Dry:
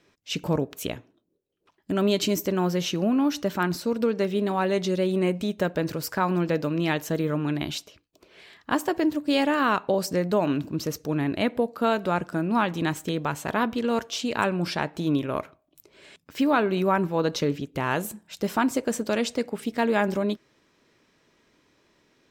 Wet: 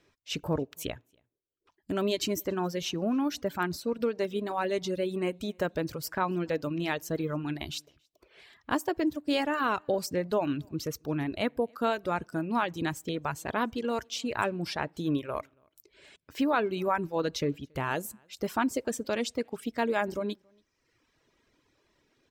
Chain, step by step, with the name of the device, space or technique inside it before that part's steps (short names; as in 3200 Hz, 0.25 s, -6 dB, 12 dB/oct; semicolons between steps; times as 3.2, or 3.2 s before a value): low shelf boost with a cut just above (low shelf 100 Hz +7.5 dB; bell 190 Hz -5 dB 0.54 oct); echo 0.279 s -22 dB; reverb removal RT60 0.97 s; gain -4 dB